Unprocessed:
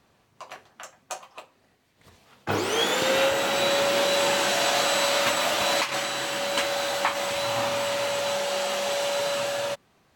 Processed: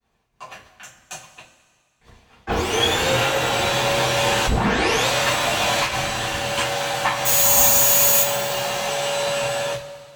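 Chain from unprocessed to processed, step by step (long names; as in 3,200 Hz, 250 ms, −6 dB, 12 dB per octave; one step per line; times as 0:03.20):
sub-octave generator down 2 octaves, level 0 dB
0:00.53–0:01.68: gain on a spectral selection 360–1,400 Hz −8 dB
0:05.82–0:06.37: low-shelf EQ 150 Hz +9 dB
downward expander −54 dBFS
0:01.30–0:02.56: high-shelf EQ 8,400 Hz −10 dB
0:04.46: tape start 0.62 s
0:07.25–0:08.22: bad sample-rate conversion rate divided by 6×, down none, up zero stuff
coupled-rooms reverb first 0.22 s, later 2 s, from −19 dB, DRR −7.5 dB
level −4 dB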